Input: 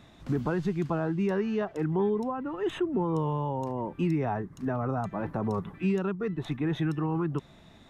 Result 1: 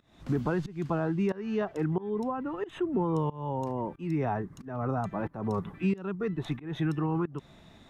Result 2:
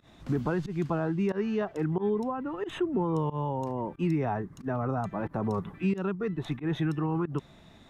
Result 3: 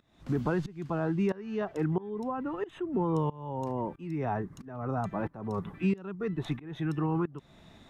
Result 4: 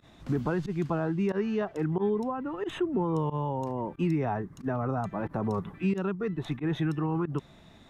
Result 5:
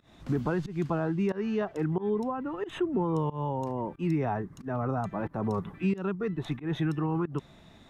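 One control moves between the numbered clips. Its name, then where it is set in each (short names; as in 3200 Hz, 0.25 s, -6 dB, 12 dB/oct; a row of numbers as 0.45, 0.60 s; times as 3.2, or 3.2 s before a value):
pump, release: 312, 110, 526, 73, 166 ms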